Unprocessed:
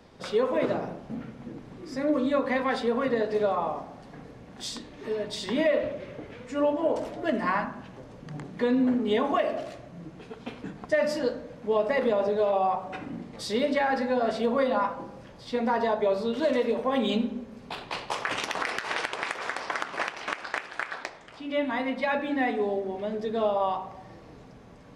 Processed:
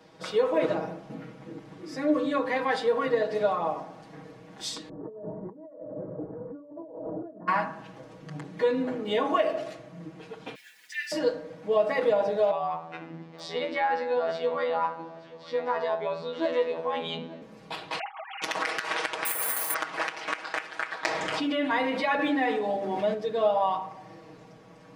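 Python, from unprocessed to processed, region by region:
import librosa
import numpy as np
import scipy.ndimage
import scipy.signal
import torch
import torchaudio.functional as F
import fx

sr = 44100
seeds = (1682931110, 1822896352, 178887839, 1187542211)

y = fx.chain(x, sr, fx.gaussian_blur(sigma=10.0),
    fx.over_compress(threshold_db=-40.0, ratio=-1.0), at=(4.89, 7.48))
y = fx.chain(y, sr, fx.steep_highpass(hz=1600.0, slope=96),
    fx.quant_dither(seeds[0], bits=10, dither='none'),
    fx.comb(ms=4.1, depth=0.58), at=(10.55, 11.12))
y = fx.chain(y, sr, fx.lowpass(hz=4600.0, slope=12),
    fx.robotise(hz=82.1),
    fx.echo_single(ms=880, db=-19.0), at=(12.51, 17.42))
y = fx.chain(y, sr, fx.sine_speech(),
    fx.over_compress(threshold_db=-41.0, ratio=-1.0), at=(17.99, 18.42))
y = fx.chain(y, sr, fx.clip_hard(threshold_db=-30.0),
    fx.resample_bad(factor=4, down='filtered', up='zero_stuff'), at=(19.25, 19.74))
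y = fx.chain(y, sr, fx.peak_eq(hz=61.0, db=-4.0, octaves=2.1),
    fx.env_flatten(amount_pct=70), at=(21.03, 23.14))
y = fx.highpass(y, sr, hz=190.0, slope=6)
y = y + 0.95 * np.pad(y, (int(6.3 * sr / 1000.0), 0))[:len(y)]
y = F.gain(torch.from_numpy(y), -2.0).numpy()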